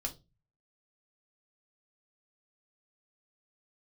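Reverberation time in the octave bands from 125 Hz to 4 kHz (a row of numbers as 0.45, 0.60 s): 0.65, 0.40, 0.30, 0.20, 0.20, 0.25 s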